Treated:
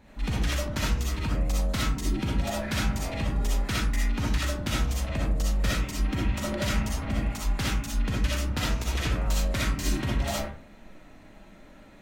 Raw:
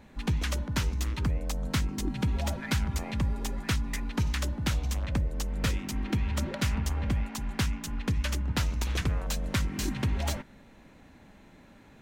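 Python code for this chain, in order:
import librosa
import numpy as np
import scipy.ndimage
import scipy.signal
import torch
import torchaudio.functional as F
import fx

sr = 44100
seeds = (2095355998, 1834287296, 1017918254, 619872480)

y = fx.rev_freeverb(x, sr, rt60_s=0.45, hf_ratio=0.5, predelay_ms=20, drr_db=-6.0)
y = y * 10.0 ** (-3.0 / 20.0)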